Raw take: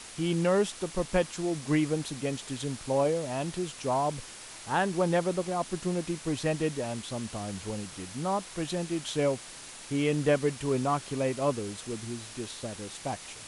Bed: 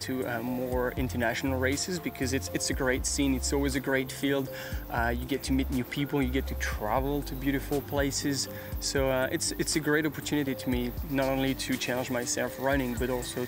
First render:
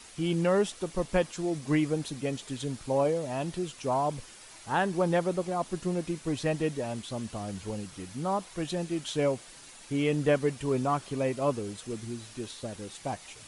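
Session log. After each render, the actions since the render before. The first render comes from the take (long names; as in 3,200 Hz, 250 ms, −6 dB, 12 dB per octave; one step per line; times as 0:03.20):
broadband denoise 7 dB, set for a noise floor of −46 dBFS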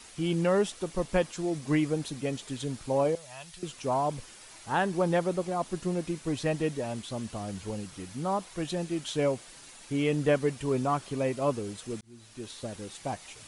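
0:03.15–0:03.63: guitar amp tone stack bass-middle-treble 10-0-10
0:12.01–0:12.59: fade in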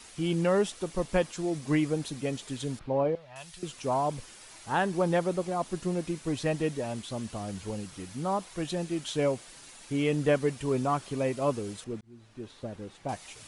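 0:02.79–0:03.36: high-frequency loss of the air 340 metres
0:11.84–0:13.09: low-pass filter 1,400 Hz 6 dB per octave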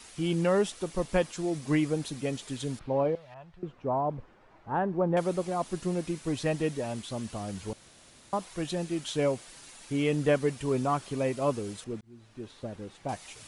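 0:03.34–0:05.17: low-pass filter 1,100 Hz
0:07.73–0:08.33: fill with room tone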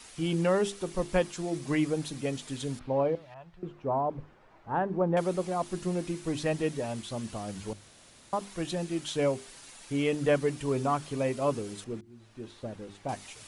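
mains-hum notches 50/100/150/200/250/300/350/400 Hz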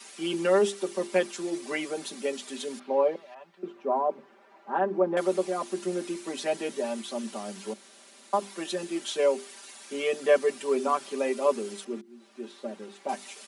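Butterworth high-pass 220 Hz 48 dB per octave
comb filter 5.1 ms, depth 95%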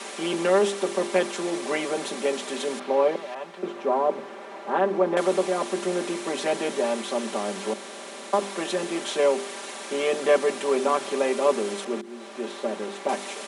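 compressor on every frequency bin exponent 0.6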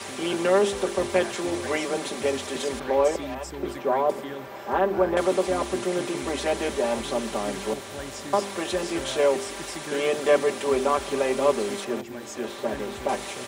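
mix in bed −10 dB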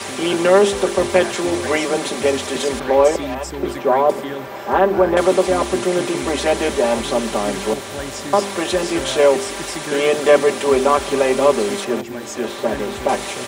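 level +8 dB
brickwall limiter −2 dBFS, peak gain reduction 1.5 dB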